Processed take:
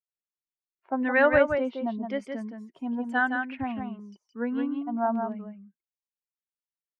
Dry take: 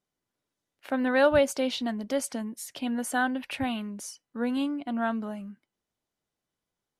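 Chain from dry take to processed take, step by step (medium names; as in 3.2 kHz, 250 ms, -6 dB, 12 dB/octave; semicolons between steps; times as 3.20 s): expander on every frequency bin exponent 1.5; LFO low-pass saw down 0.97 Hz 830–2500 Hz; delay 167 ms -5.5 dB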